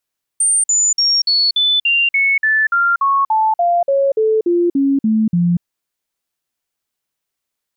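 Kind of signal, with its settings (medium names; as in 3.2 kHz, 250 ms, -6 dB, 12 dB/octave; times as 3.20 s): stepped sine 8.82 kHz down, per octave 3, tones 18, 0.24 s, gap 0.05 s -11 dBFS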